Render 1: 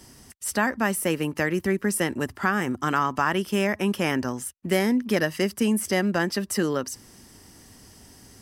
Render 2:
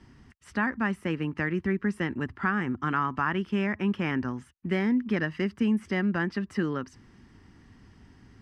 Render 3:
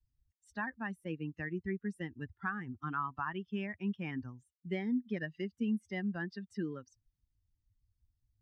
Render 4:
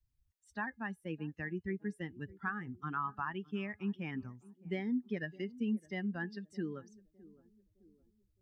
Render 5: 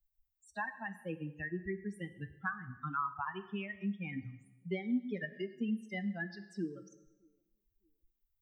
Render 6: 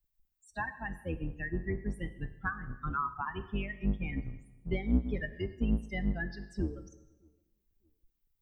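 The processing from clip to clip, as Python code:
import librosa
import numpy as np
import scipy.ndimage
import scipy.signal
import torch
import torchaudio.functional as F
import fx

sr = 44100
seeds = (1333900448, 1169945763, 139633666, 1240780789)

y1 = scipy.signal.sosfilt(scipy.signal.butter(2, 2000.0, 'lowpass', fs=sr, output='sos'), x)
y1 = fx.peak_eq(y1, sr, hz=590.0, db=-11.5, octaves=1.2)
y2 = fx.bin_expand(y1, sr, power=2.0)
y2 = F.gain(torch.from_numpy(y2), -6.0).numpy()
y3 = fx.comb_fb(y2, sr, f0_hz=420.0, decay_s=0.17, harmonics='all', damping=0.0, mix_pct=40)
y3 = fx.echo_banded(y3, sr, ms=612, feedback_pct=47, hz=320.0, wet_db=-19.0)
y3 = F.gain(torch.from_numpy(y3), 3.0).numpy()
y4 = fx.bin_expand(y3, sr, power=2.0)
y4 = fx.rev_plate(y4, sr, seeds[0], rt60_s=0.86, hf_ratio=0.95, predelay_ms=0, drr_db=10.5)
y4 = fx.band_squash(y4, sr, depth_pct=40)
y4 = F.gain(torch.from_numpy(y4), 3.5).numpy()
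y5 = fx.octave_divider(y4, sr, octaves=2, level_db=3.0)
y5 = F.gain(torch.from_numpy(y5), 2.0).numpy()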